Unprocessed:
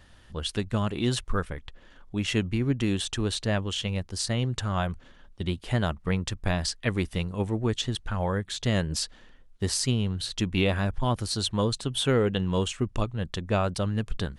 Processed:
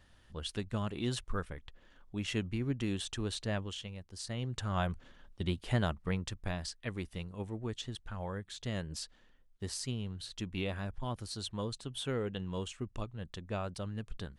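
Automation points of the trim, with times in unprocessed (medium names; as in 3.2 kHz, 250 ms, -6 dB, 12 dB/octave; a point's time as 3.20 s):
3.62 s -8.5 dB
3.97 s -16.5 dB
4.83 s -4.5 dB
5.77 s -4.5 dB
6.71 s -12 dB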